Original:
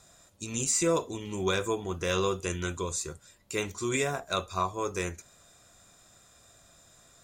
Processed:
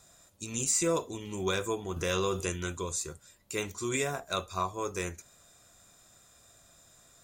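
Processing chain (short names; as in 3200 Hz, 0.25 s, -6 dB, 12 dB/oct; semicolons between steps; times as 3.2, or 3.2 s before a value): high shelf 11000 Hz +8 dB; 1.96–2.5 fast leveller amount 50%; gain -2.5 dB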